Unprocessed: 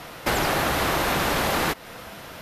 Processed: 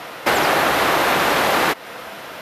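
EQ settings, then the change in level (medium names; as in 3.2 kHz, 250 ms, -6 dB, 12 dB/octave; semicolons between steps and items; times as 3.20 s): high-pass 190 Hz 6 dB/octave; tone controls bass -6 dB, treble -5 dB; +7.5 dB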